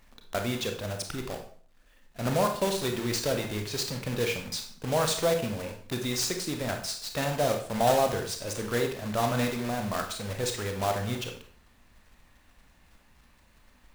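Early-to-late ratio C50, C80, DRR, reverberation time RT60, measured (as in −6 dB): 7.0 dB, 11.5 dB, 4.0 dB, 0.50 s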